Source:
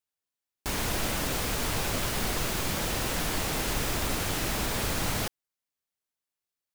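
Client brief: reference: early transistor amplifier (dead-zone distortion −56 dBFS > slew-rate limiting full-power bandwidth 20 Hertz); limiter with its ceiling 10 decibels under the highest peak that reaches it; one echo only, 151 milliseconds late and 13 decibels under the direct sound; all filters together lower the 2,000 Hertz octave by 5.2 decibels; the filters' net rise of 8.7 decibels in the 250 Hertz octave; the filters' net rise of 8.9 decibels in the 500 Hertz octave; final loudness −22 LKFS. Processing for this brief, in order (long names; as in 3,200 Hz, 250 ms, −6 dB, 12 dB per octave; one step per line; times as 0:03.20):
parametric band 250 Hz +8.5 dB
parametric band 500 Hz +9 dB
parametric band 2,000 Hz −7.5 dB
brickwall limiter −23 dBFS
single-tap delay 151 ms −13 dB
dead-zone distortion −56 dBFS
slew-rate limiting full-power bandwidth 20 Hz
level +12.5 dB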